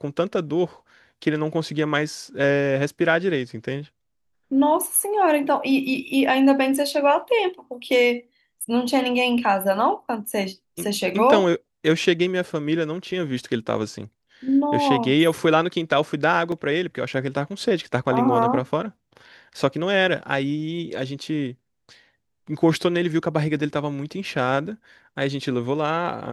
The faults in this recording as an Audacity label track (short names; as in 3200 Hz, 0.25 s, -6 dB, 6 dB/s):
16.520000	16.520000	gap 2.8 ms